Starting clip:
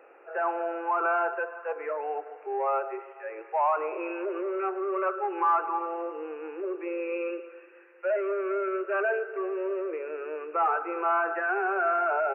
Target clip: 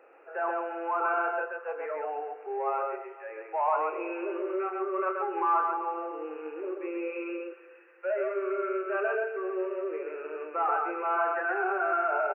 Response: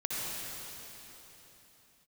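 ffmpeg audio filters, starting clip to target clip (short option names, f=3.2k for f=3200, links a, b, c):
-af "aecho=1:1:32.07|131.2:0.355|0.708,volume=-3.5dB"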